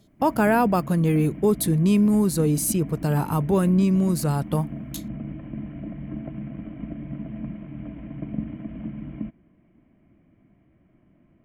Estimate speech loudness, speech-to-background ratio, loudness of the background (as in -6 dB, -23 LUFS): -21.5 LUFS, 14.0 dB, -35.5 LUFS